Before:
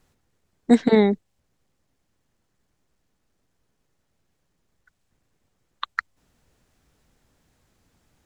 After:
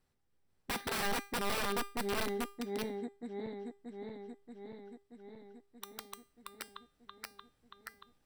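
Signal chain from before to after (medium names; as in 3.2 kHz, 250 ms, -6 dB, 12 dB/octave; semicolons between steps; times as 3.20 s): backward echo that repeats 315 ms, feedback 81%, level -3.5 dB; integer overflow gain 17 dB; band-stop 6.7 kHz, Q 5.4; feedback comb 400 Hz, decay 0.38 s, harmonics all, mix 70%; trim -3.5 dB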